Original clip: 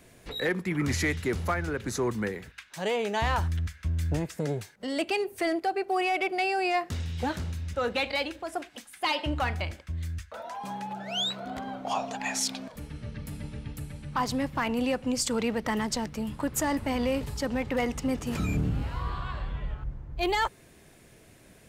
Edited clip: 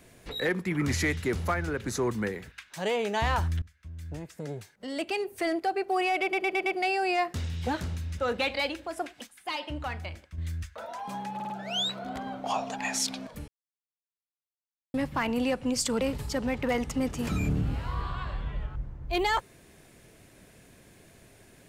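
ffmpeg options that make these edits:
-filter_complex "[0:a]asplit=14[a][b][c][d][e][f][g][h][i][j][k][l][m][n];[a]atrim=end=3.62,asetpts=PTS-STARTPTS,afade=t=out:st=3.616:d=0.004:c=hsin:silence=0.0841395[o];[b]atrim=start=3.62:end=6.332,asetpts=PTS-STARTPTS,afade=t=in:d=2.1:silence=0.0841395[p];[c]atrim=start=6.218:end=6.332[q];[d]atrim=start=6.218:end=6.332[r];[e]atrim=start=6.218:end=6.332[s];[f]atrim=start=6.218:end=8.832[t];[g]atrim=start=8.828:end=9.942,asetpts=PTS-STARTPTS,volume=-6dB[u];[h]atrim=start=9.938:end=10.962[v];[i]atrim=start=10.908:end=10.962[w];[j]atrim=start=10.908:end=10.962[x];[k]atrim=start=10.908:end=12.89,asetpts=PTS-STARTPTS,afade=t=out:st=1.978:d=0.004:c=hsin[y];[l]atrim=start=12.89:end=14.35,asetpts=PTS-STARTPTS,volume=0[z];[m]atrim=start=14.35:end=15.422,asetpts=PTS-STARTPTS,afade=t=in:d=0.004:c=hsin[aa];[n]atrim=start=17.088[ab];[o][p]concat=n=2:v=0:a=1[ac];[ac][q]acrossfade=d=0.004:c1=hsin:c2=hsin[ad];[ad][r]acrossfade=d=0.004:c1=hsin:c2=hsin[ae];[ae][s]acrossfade=d=0.004:c1=hsin:c2=hsin[af];[af][t]acrossfade=d=0.004:c1=hsin:c2=hsin[ag];[ag][u]acrossfade=d=0.004:c1=hsin:c2=hsin[ah];[ah][v]acrossfade=d=0.004:c1=hsin:c2=hsin[ai];[ai][w]acrossfade=d=0.004:c1=hsin:c2=hsin[aj];[aj][x]acrossfade=d=0.004:c1=hsin:c2=hsin[ak];[y][z][aa]concat=n=3:v=0:a=1[al];[ak][al]acrossfade=d=0.004:c1=hsin:c2=hsin[am];[am][ab]acrossfade=d=0.004:c1=hsin:c2=hsin"

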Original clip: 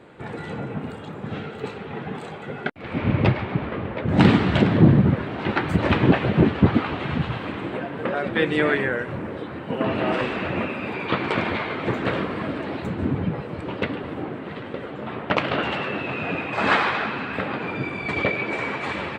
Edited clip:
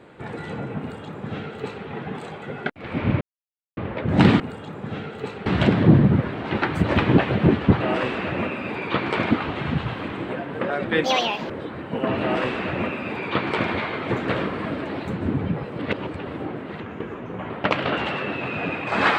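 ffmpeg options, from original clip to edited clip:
-filter_complex "[0:a]asplit=13[a][b][c][d][e][f][g][h][i][j][k][l][m];[a]atrim=end=3.21,asetpts=PTS-STARTPTS,afade=t=out:st=3.206:d=0.004:c=hsin[n];[b]atrim=start=3.21:end=3.77,asetpts=PTS-STARTPTS,volume=0[o];[c]atrim=start=3.77:end=4.402,asetpts=PTS-STARTPTS,afade=t=in:d=0.004:c=hsin[p];[d]atrim=start=0.798:end=1.862[q];[e]atrim=start=4.398:end=6.752[r];[f]atrim=start=9.988:end=11.492[s];[g]atrim=start=6.748:end=8.484[t];[h]atrim=start=8.48:end=9.27,asetpts=PTS-STARTPTS,asetrate=75852,aresample=44100,atrim=end_sample=20255,asetpts=PTS-STARTPTS[u];[i]atrim=start=9.266:end=13.562[v];[j]atrim=start=13.558:end=13.962,asetpts=PTS-STARTPTS,areverse[w];[k]atrim=start=13.958:end=14.574[x];[l]atrim=start=14.57:end=15.16,asetpts=PTS-STARTPTS,asetrate=37044,aresample=44100[y];[m]atrim=start=15.156[z];[n][o][p]concat=n=3:v=0:a=1[aa];[aa][q]acrossfade=d=0.004:c1=hsin:c2=hsin[ab];[ab][r]acrossfade=d=0.004:c1=hsin:c2=hsin[ac];[ac][s]acrossfade=d=0.004:c1=hsin:c2=hsin[ad];[ad][t]acrossfade=d=0.004:c1=hsin:c2=hsin[ae];[ae][u]acrossfade=d=0.004:c1=hsin:c2=hsin[af];[af][v]acrossfade=d=0.004:c1=hsin:c2=hsin[ag];[ag][w]acrossfade=d=0.004:c1=hsin:c2=hsin[ah];[ah][x]acrossfade=d=0.004:c1=hsin:c2=hsin[ai];[ai][y]acrossfade=d=0.004:c1=hsin:c2=hsin[aj];[aj][z]acrossfade=d=0.004:c1=hsin:c2=hsin"

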